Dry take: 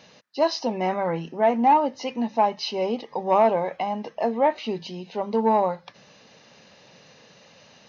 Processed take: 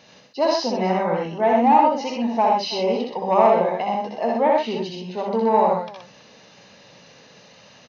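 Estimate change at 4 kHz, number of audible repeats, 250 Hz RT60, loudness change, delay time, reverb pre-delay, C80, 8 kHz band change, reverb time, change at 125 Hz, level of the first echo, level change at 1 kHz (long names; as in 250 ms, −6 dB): +3.5 dB, 3, no reverb audible, +3.5 dB, 64 ms, no reverb audible, no reverb audible, can't be measured, no reverb audible, +4.0 dB, −3.0 dB, +3.5 dB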